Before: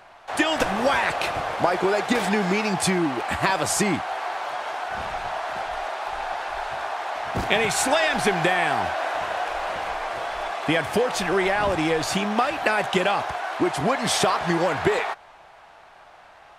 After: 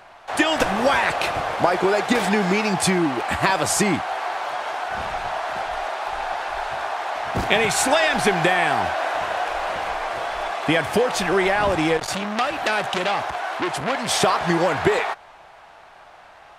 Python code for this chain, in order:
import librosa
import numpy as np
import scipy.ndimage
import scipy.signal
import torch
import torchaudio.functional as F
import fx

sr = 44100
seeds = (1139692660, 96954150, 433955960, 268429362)

y = fx.transformer_sat(x, sr, knee_hz=3300.0, at=(11.97, 14.23))
y = y * librosa.db_to_amplitude(2.5)